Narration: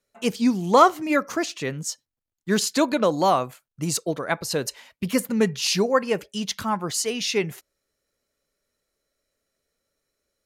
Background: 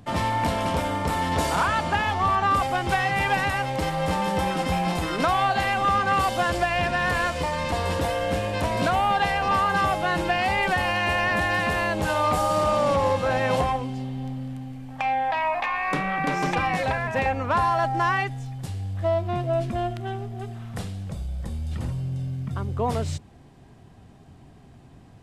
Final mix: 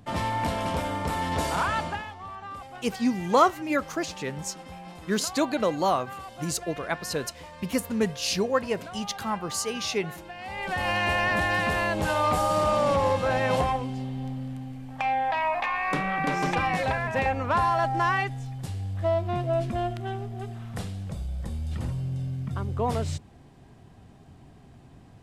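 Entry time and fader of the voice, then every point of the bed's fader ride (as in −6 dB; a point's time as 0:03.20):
2.60 s, −4.5 dB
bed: 0:01.82 −3.5 dB
0:02.16 −18 dB
0:10.34 −18 dB
0:10.90 −1.5 dB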